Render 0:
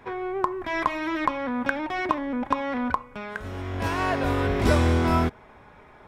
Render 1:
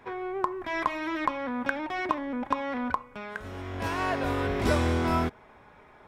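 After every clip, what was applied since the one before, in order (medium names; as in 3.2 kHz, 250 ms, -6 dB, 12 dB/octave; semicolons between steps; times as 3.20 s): bass shelf 170 Hz -4 dB; trim -3 dB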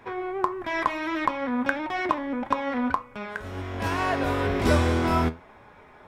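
flange 1.6 Hz, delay 8.5 ms, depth 4.1 ms, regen +71%; trim +7.5 dB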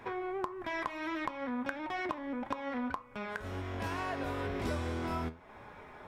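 compression 3:1, threshold -37 dBFS, peak gain reduction 15.5 dB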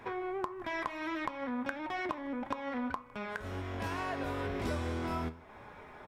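delay 158 ms -23.5 dB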